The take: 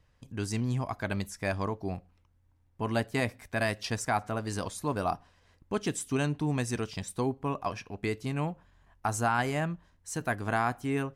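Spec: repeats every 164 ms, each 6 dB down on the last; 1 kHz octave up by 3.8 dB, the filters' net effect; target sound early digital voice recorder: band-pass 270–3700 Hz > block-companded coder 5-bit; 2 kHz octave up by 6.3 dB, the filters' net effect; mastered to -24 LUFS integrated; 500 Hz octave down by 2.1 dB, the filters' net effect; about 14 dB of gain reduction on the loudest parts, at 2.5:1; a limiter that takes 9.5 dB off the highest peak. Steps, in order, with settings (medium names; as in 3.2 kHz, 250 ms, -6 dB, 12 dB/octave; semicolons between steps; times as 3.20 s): peaking EQ 500 Hz -4.5 dB; peaking EQ 1 kHz +5 dB; peaking EQ 2 kHz +7 dB; compression 2.5:1, threshold -41 dBFS; peak limiter -31 dBFS; band-pass 270–3700 Hz; feedback delay 164 ms, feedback 50%, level -6 dB; block-companded coder 5-bit; trim +20.5 dB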